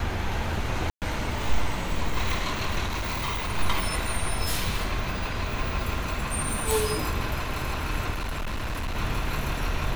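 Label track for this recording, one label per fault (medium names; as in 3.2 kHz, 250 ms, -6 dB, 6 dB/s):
0.900000	1.020000	dropout 118 ms
2.850000	3.520000	clipped -25 dBFS
6.710000	6.710000	pop
8.110000	8.970000	clipped -26.5 dBFS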